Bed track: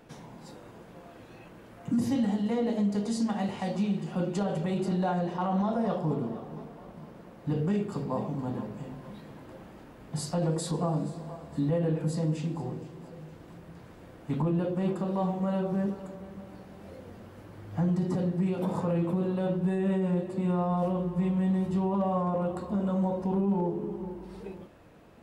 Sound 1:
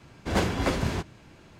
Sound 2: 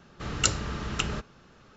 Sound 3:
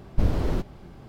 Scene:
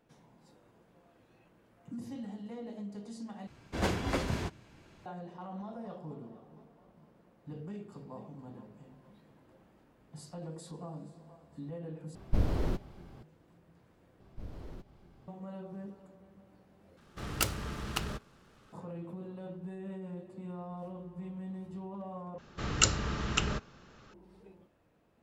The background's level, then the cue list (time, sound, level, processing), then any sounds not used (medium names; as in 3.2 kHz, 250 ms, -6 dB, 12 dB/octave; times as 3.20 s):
bed track -15 dB
3.47 s: replace with 1 -6 dB
12.15 s: replace with 3 -6 dB
14.20 s: replace with 3 -13.5 dB + compression 1.5:1, threshold -40 dBFS
16.97 s: replace with 2 -5.5 dB + delay time shaken by noise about 1.8 kHz, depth 0.048 ms
22.38 s: replace with 2 -1 dB